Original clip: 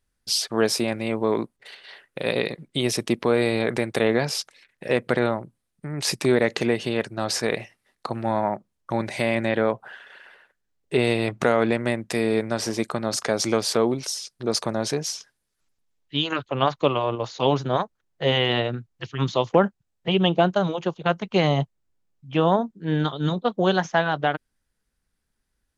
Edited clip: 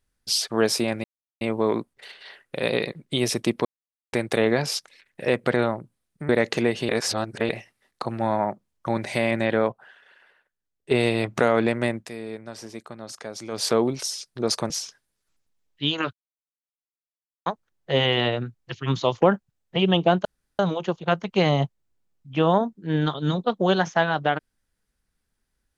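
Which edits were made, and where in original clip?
1.04 insert silence 0.37 s
3.28–3.76 mute
5.92–6.33 cut
6.93–7.53 reverse
9.76–10.95 gain -8.5 dB
12–13.68 dip -12.5 dB, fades 0.13 s
14.74–15.02 cut
16.45–17.78 mute
20.57 insert room tone 0.34 s

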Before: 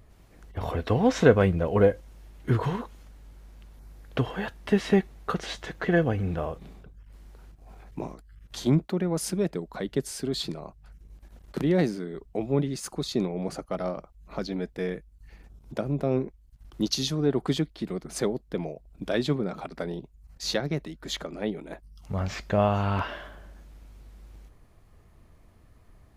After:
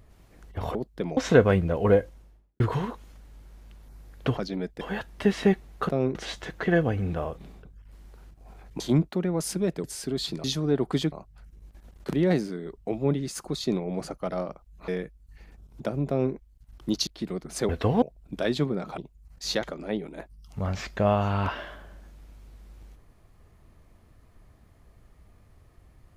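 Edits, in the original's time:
0.75–1.08 swap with 18.29–18.71
1.91–2.51 studio fade out
8.01–8.57 cut
9.61–10 cut
14.36–14.8 move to 4.28
16–16.26 copy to 5.36
16.99–17.67 move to 10.6
19.67–19.97 cut
20.62–21.16 cut

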